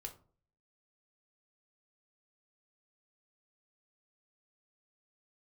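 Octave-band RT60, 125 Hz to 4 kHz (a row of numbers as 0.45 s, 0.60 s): 0.65 s, 0.55 s, 0.50 s, 0.40 s, 0.25 s, 0.20 s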